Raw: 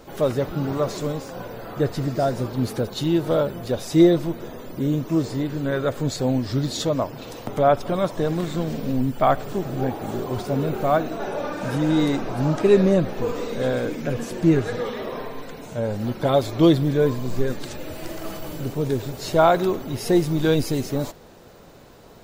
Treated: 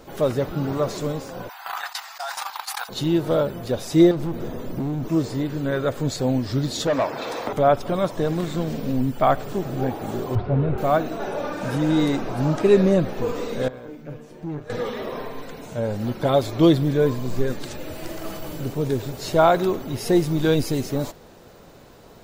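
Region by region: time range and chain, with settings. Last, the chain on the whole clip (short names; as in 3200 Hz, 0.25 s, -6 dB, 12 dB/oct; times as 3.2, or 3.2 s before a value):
1.49–2.89 Chebyshev high-pass 770 Hz, order 6 + gate -39 dBFS, range -36 dB + fast leveller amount 100%
4.11–5.08 low shelf 460 Hz +8 dB + compressor, threshold -19 dBFS + hard clip -22.5 dBFS
6.87–7.53 notch 2900 Hz, Q 7.7 + overdrive pedal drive 21 dB, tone 1800 Hz, clips at -11.5 dBFS + low shelf 250 Hz -8 dB
10.35–10.78 Gaussian blur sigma 3 samples + resonant low shelf 150 Hz +8.5 dB, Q 1.5
13.68–14.7 resonator 150 Hz, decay 0.32 s, mix 80% + tube stage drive 25 dB, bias 0.55 + high shelf 2700 Hz -9 dB
whole clip: dry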